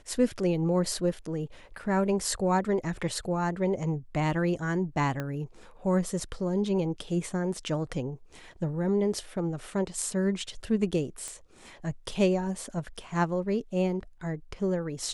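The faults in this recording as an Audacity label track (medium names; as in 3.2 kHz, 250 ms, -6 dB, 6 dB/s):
5.200000	5.200000	pop -19 dBFS
11.280000	11.280000	pop -23 dBFS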